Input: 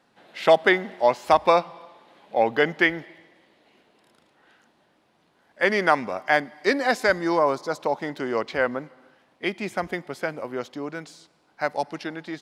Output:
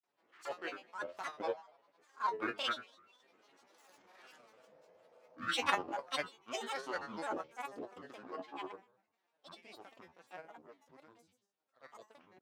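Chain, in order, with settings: half-wave gain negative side -3 dB; Doppler pass-by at 4.3, 23 m/s, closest 10 m; resonator 150 Hz, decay 0.49 s, harmonics all, mix 90%; transient shaper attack -11 dB, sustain -7 dB; notches 50/100/150/200/250/300/350 Hz; grains, spray 37 ms, pitch spread up and down by 12 st; HPF 110 Hz; tone controls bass -10 dB, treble +9 dB; spectral repair 4.64–5.56, 330–1100 Hz before; high shelf 3300 Hz -10.5 dB; gain +17.5 dB

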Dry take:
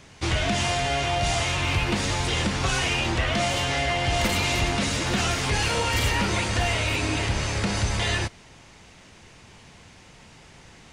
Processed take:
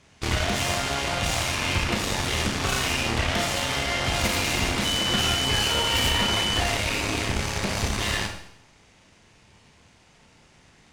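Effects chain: added harmonics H 3 -17 dB, 6 -16 dB, 7 -32 dB, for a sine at -12.5 dBFS; Schroeder reverb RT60 0.69 s, combs from 27 ms, DRR 4 dB; 4.84–6.59 whine 3000 Hz -25 dBFS

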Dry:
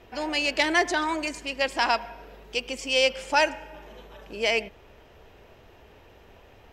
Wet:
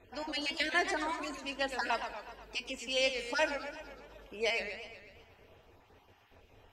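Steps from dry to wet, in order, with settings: random spectral dropouts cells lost 26%; resonator 91 Hz, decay 0.17 s, harmonics odd, mix 60%; warbling echo 0.123 s, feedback 57%, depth 200 cents, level -9 dB; gain -2.5 dB

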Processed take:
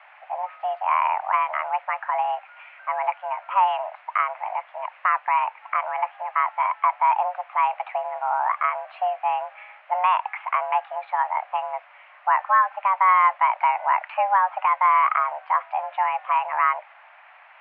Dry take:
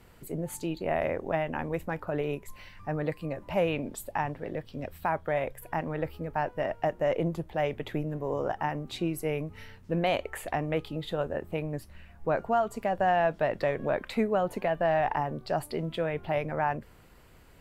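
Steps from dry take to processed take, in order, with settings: in parallel at -11.5 dB: requantised 6-bit, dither triangular; on the sum: mistuned SSB +380 Hz 280–2100 Hz; gain +6 dB

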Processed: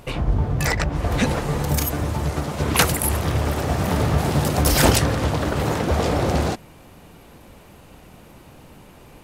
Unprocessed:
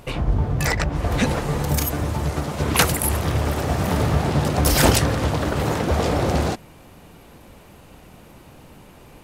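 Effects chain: 4.18–4.63 high shelf 8800 Hz +11.5 dB

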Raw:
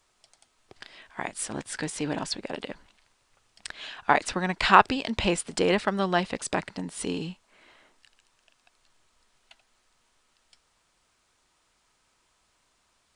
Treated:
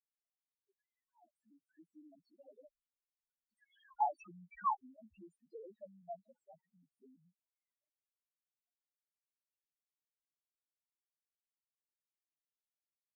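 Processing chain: Doppler pass-by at 4.05, 7 m/s, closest 1.5 m; loudest bins only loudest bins 1; auto-wah 470–1200 Hz, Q 2.1, up, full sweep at -43 dBFS; gain +8.5 dB

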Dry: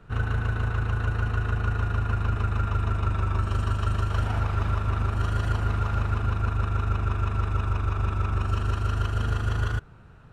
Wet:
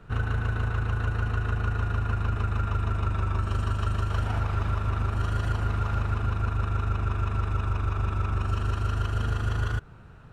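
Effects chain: compressor 2:1, threshold -26 dBFS, peak gain reduction 4 dB; gain +1.5 dB

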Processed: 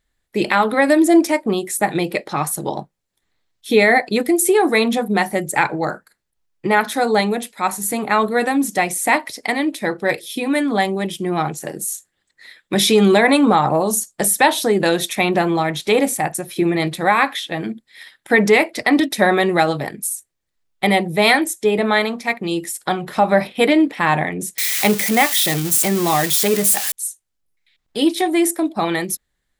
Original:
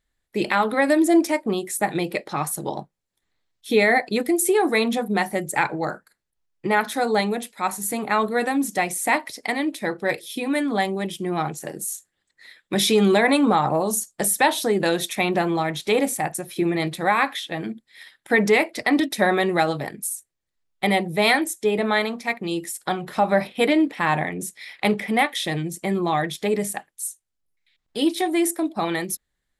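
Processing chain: 24.58–26.92 switching spikes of -15.5 dBFS; gain +4.5 dB

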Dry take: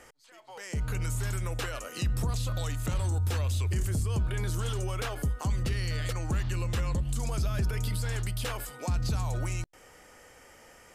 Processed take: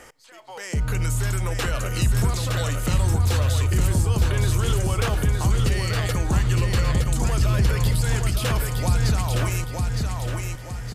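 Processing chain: feedback echo 0.914 s, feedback 42%, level -4 dB; on a send at -22 dB: reverb RT60 2.3 s, pre-delay 13 ms; on the sum: gain +7.5 dB

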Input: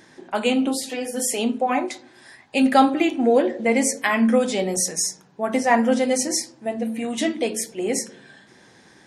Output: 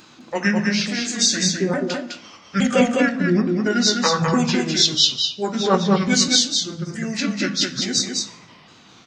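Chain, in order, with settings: repeated pitch sweeps -6 st, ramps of 0.868 s; high shelf 2700 Hz +9.5 dB; formant shift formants -5 st; echo 0.206 s -4 dB; plate-style reverb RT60 0.85 s, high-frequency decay 0.75×, DRR 13 dB

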